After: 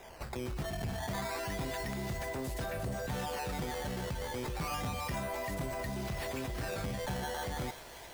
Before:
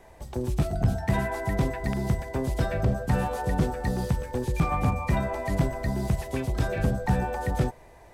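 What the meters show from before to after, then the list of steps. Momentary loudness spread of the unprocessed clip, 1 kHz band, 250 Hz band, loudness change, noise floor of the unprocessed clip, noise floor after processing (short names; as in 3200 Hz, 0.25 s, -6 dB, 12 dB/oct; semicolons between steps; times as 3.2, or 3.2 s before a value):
4 LU, -7.5 dB, -11.5 dB, -9.5 dB, -51 dBFS, -49 dBFS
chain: tilt +1.5 dB/oct; in parallel at 0 dB: negative-ratio compressor -38 dBFS, ratio -1; on the sum: decimation with a swept rate 10×, swing 160% 0.31 Hz; soft clip -22 dBFS, distortion -16 dB; thin delay 0.353 s, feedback 70%, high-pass 2200 Hz, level -9 dB; gain -8 dB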